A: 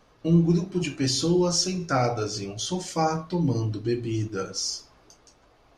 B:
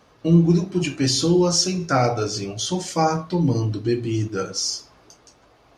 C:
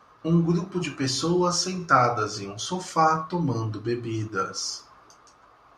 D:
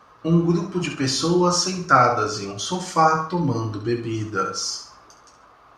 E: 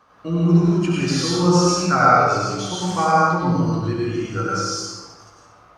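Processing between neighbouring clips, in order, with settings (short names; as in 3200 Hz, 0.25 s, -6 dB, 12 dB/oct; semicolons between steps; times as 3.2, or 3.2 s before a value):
HPF 56 Hz; gain +4.5 dB
bell 1200 Hz +14.5 dB 0.88 oct; gain -6.5 dB
flutter echo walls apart 11.6 m, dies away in 0.43 s; gain +3.5 dB
reverb RT60 1.2 s, pre-delay 88 ms, DRR -5.5 dB; gain -5 dB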